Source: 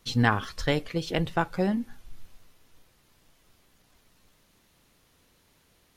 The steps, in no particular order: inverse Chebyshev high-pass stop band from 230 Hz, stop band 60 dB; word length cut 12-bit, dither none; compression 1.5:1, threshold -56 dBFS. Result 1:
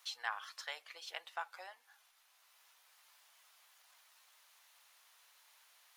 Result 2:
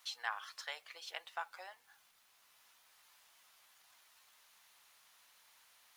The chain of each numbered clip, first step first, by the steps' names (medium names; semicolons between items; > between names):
word length cut > compression > inverse Chebyshev high-pass; compression > inverse Chebyshev high-pass > word length cut